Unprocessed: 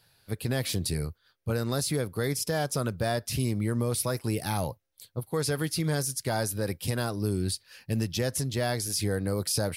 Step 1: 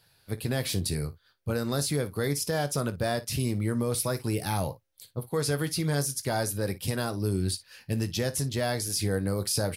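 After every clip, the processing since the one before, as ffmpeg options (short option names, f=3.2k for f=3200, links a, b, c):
-af "aecho=1:1:21|56:0.224|0.141"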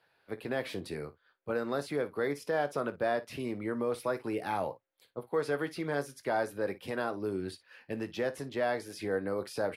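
-filter_complex "[0:a]acrossover=split=260 2700:gain=0.1 1 0.0891[a][b][c];[a][b][c]amix=inputs=3:normalize=0"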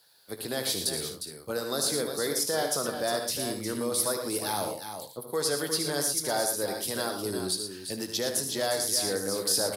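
-filter_complex "[0:a]aexciter=amount=10.3:drive=5.3:freq=3.7k,asplit=2[a][b];[b]aecho=0:1:76|114|357|414:0.376|0.355|0.376|0.133[c];[a][c]amix=inputs=2:normalize=0"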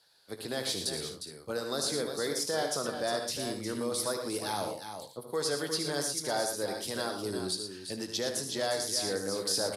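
-af "lowpass=8.7k,volume=-2.5dB"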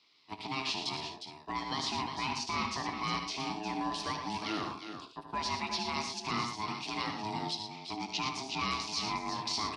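-af "aeval=exprs='val(0)*sin(2*PI*530*n/s)':c=same,highpass=160,equalizer=f=290:t=q:w=4:g=4,equalizer=f=1.5k:t=q:w=4:g=-7,equalizer=f=2.5k:t=q:w=4:g=9,lowpass=f=5.4k:w=0.5412,lowpass=f=5.4k:w=1.3066,volume=2dB"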